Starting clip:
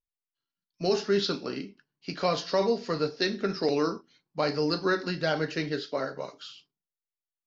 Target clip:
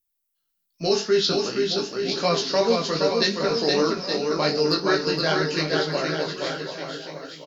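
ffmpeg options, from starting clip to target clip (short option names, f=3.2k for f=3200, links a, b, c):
-af "aemphasis=mode=production:type=50fm,flanger=delay=17.5:depth=3.2:speed=2.6,aecho=1:1:470|869.5|1209|1498|1743:0.631|0.398|0.251|0.158|0.1,volume=6.5dB"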